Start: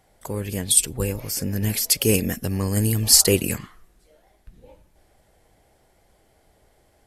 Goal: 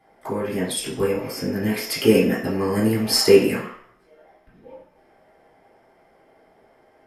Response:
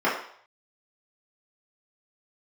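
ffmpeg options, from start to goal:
-filter_complex "[1:a]atrim=start_sample=2205[s0];[0:a][s0]afir=irnorm=-1:irlink=0,volume=0.299"

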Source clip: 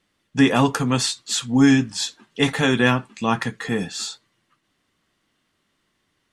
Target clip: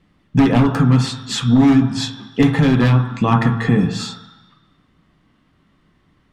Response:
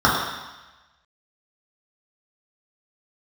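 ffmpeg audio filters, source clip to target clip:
-filter_complex "[0:a]bandreject=f=113.2:t=h:w=4,bandreject=f=226.4:t=h:w=4,bandreject=f=339.6:t=h:w=4,bandreject=f=452.8:t=h:w=4,bandreject=f=566:t=h:w=4,bandreject=f=679.2:t=h:w=4,bandreject=f=792.4:t=h:w=4,bandreject=f=905.6:t=h:w=4,bandreject=f=1018.8:t=h:w=4,bandreject=f=1132:t=h:w=4,bandreject=f=1245.2:t=h:w=4,bandreject=f=1358.4:t=h:w=4,bandreject=f=1471.6:t=h:w=4,bandreject=f=1584.8:t=h:w=4,bandreject=f=1698:t=h:w=4,bandreject=f=1811.2:t=h:w=4,bandreject=f=1924.4:t=h:w=4,bandreject=f=2037.6:t=h:w=4,bandreject=f=2150.8:t=h:w=4,bandreject=f=2264:t=h:w=4,bandreject=f=2377.2:t=h:w=4,bandreject=f=2490.4:t=h:w=4,bandreject=f=2603.6:t=h:w=4,bandreject=f=2716.8:t=h:w=4,bandreject=f=2830:t=h:w=4,bandreject=f=2943.2:t=h:w=4,bandreject=f=3056.4:t=h:w=4,bandreject=f=3169.6:t=h:w=4,bandreject=f=3282.8:t=h:w=4,bandreject=f=3396:t=h:w=4,bandreject=f=3509.2:t=h:w=4,bandreject=f=3622.4:t=h:w=4,bandreject=f=3735.6:t=h:w=4,aeval=exprs='0.237*(abs(mod(val(0)/0.237+3,4)-2)-1)':c=same,bass=f=250:g=12,treble=f=4000:g=-12,acompressor=threshold=0.1:ratio=4,asplit=2[s0][s1];[1:a]atrim=start_sample=2205[s2];[s1][s2]afir=irnorm=-1:irlink=0,volume=0.0355[s3];[s0][s3]amix=inputs=2:normalize=0,volume=2.24"

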